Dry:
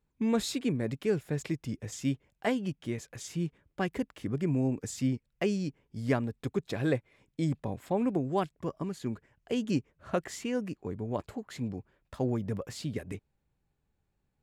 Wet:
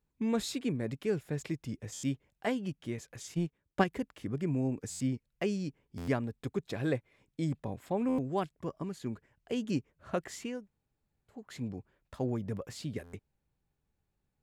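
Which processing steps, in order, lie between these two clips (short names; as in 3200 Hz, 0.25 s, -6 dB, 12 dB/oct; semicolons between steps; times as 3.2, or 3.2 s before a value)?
3.34–3.84 transient shaper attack +10 dB, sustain -10 dB; 10.56–11.38 room tone, crossfade 0.24 s; stuck buffer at 1.93/4.9/5.97/8.08/13.03, samples 512, times 8; gain -3 dB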